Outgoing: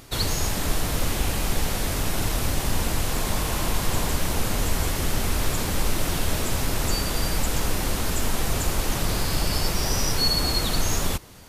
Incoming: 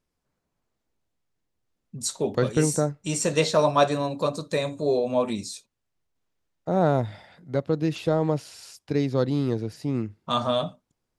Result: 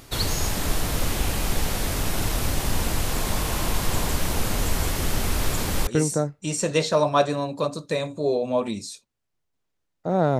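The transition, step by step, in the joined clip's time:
outgoing
0:05.87: continue with incoming from 0:02.49

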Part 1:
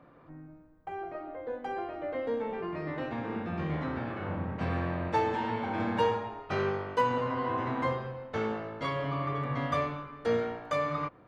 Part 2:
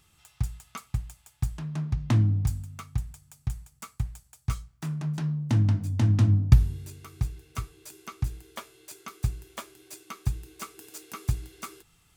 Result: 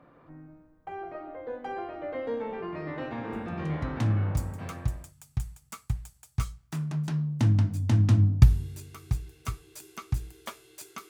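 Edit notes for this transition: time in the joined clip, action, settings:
part 1
0:04.20: continue with part 2 from 0:02.30, crossfade 1.88 s equal-power

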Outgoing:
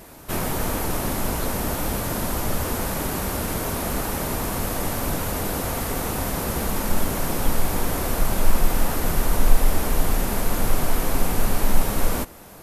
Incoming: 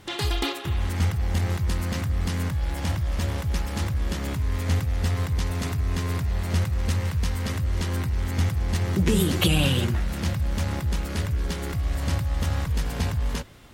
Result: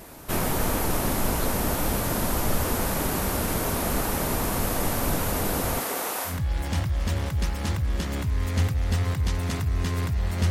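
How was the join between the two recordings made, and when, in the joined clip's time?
outgoing
0:05.79–0:06.40: high-pass filter 290 Hz → 830 Hz
0:06.32: continue with incoming from 0:02.44, crossfade 0.16 s

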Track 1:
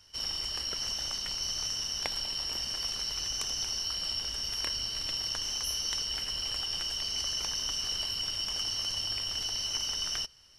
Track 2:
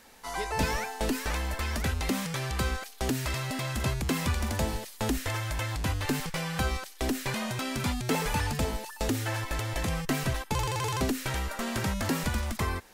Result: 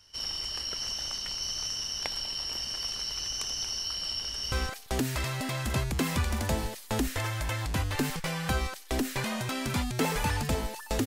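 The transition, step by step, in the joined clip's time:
track 1
0:04.24–0:04.52: delay throw 170 ms, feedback 10%, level −6.5 dB
0:04.52: continue with track 2 from 0:02.62

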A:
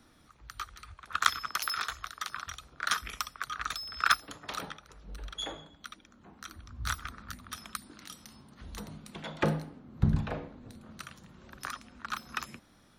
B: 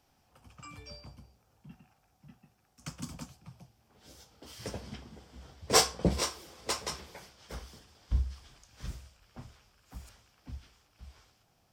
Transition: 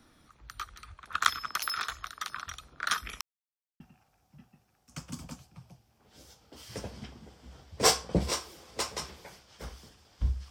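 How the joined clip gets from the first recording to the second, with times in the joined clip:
A
0:03.21–0:03.80: silence
0:03.80: continue with B from 0:01.70

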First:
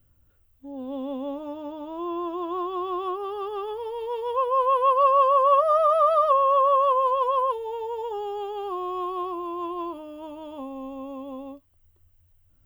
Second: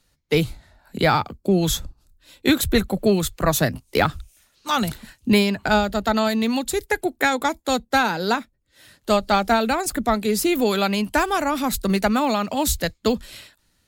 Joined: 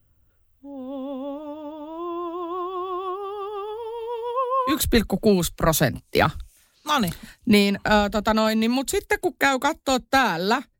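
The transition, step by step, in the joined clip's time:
first
0:04.31–0:04.78: high-pass filter 180 Hz → 810 Hz
0:04.72: continue with second from 0:02.52, crossfade 0.12 s

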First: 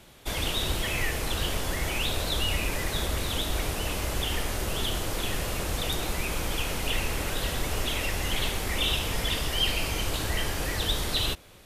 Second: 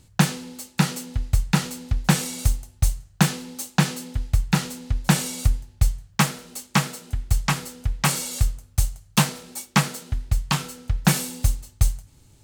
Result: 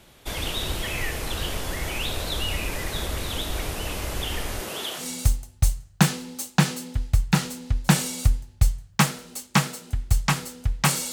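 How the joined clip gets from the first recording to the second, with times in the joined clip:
first
0:04.60–0:05.09: high-pass filter 150 Hz → 700 Hz
0:05.02: continue with second from 0:02.22, crossfade 0.14 s

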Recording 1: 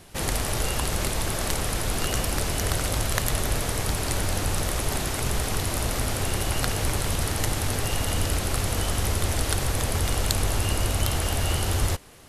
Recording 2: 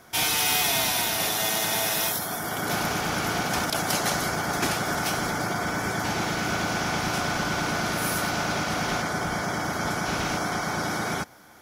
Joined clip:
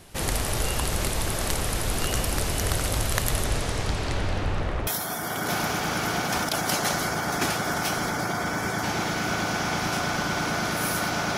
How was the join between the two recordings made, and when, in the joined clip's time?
recording 1
0:03.44–0:04.87: low-pass filter 9,900 Hz → 1,800 Hz
0:04.87: continue with recording 2 from 0:02.08

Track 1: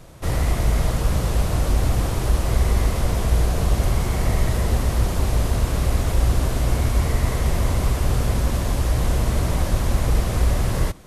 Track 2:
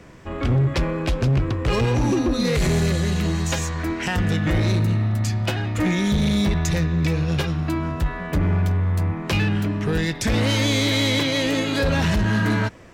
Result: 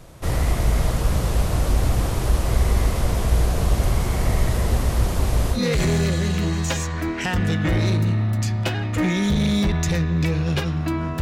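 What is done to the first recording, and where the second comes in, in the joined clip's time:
track 1
0:05.56: continue with track 2 from 0:02.38, crossfade 0.10 s

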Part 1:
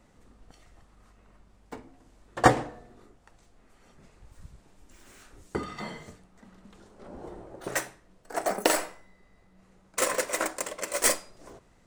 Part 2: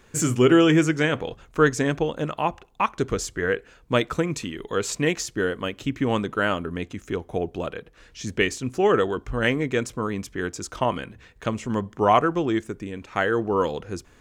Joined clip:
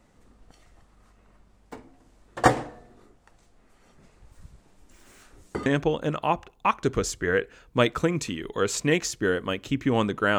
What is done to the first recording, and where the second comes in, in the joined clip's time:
part 1
0:05.66: continue with part 2 from 0:01.81

